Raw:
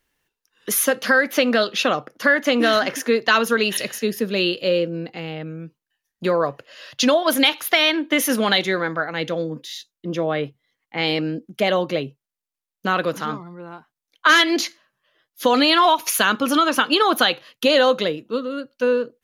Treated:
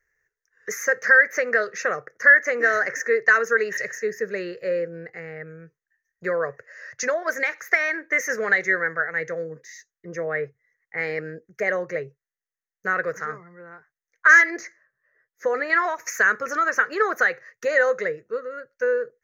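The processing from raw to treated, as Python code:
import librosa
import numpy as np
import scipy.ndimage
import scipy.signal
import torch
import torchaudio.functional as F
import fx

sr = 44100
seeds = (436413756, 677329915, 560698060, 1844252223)

y = fx.high_shelf(x, sr, hz=2100.0, db=-10.0, at=(14.5, 15.7))
y = fx.curve_eq(y, sr, hz=(110.0, 180.0, 270.0, 430.0, 910.0, 1900.0, 3200.0, 6400.0, 10000.0, 15000.0), db=(0, -6, -18, 5, -9, 14, -28, 5, -27, -4))
y = F.gain(torch.from_numpy(y), -5.5).numpy()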